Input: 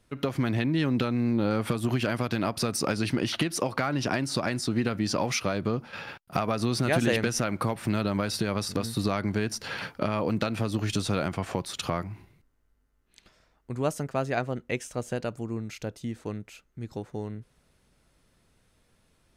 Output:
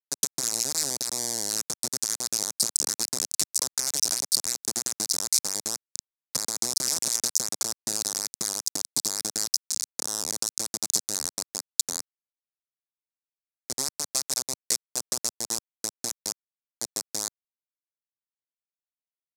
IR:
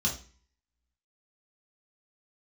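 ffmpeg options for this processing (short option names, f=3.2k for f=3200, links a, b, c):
-af "afftfilt=real='re*pow(10,9/40*sin(2*PI*(1*log(max(b,1)*sr/1024/100)/log(2)-(-1.1)*(pts-256)/sr)))':imag='im*pow(10,9/40*sin(2*PI*(1*log(max(b,1)*sr/1024/100)/log(2)-(-1.1)*(pts-256)/sr)))':win_size=1024:overlap=0.75,afftdn=nr=19:nf=-35,alimiter=limit=-17.5dB:level=0:latency=1:release=444,acompressor=threshold=-32dB:ratio=8,acrusher=bits=4:mix=0:aa=0.000001,aexciter=amount=15.2:drive=8.7:freq=4.7k,highpass=170,lowpass=7.4k,volume=-3.5dB"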